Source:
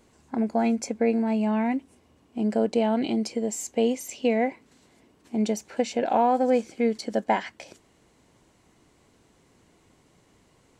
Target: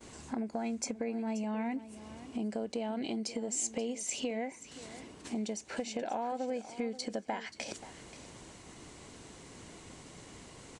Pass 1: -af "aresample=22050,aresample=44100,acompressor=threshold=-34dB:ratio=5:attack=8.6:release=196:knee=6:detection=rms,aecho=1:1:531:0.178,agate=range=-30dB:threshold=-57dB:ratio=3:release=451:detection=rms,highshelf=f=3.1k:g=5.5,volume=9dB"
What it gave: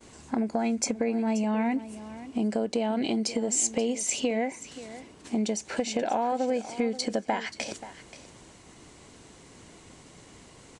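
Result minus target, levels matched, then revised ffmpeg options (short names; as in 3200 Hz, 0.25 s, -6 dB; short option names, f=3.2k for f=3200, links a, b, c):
compressor: peak gain reduction -8.5 dB
-af "aresample=22050,aresample=44100,acompressor=threshold=-44.5dB:ratio=5:attack=8.6:release=196:knee=6:detection=rms,aecho=1:1:531:0.178,agate=range=-30dB:threshold=-57dB:ratio=3:release=451:detection=rms,highshelf=f=3.1k:g=5.5,volume=9dB"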